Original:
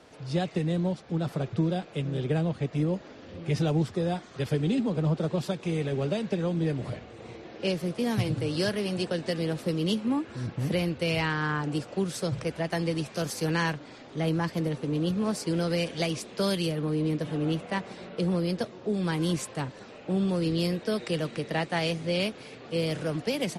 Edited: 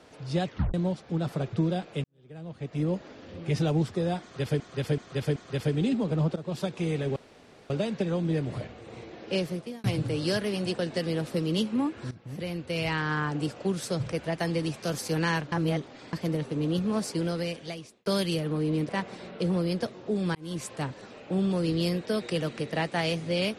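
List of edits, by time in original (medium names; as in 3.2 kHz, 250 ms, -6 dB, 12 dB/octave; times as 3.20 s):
0.46 s: tape stop 0.28 s
2.04–2.89 s: fade in quadratic
4.22–4.60 s: loop, 4 plays
5.22–5.50 s: fade in, from -14.5 dB
6.02 s: insert room tone 0.54 s
7.76–8.16 s: fade out
10.43–11.40 s: fade in, from -16.5 dB
13.84–14.45 s: reverse
15.41–16.38 s: fade out
17.21–17.67 s: delete
19.13–19.53 s: fade in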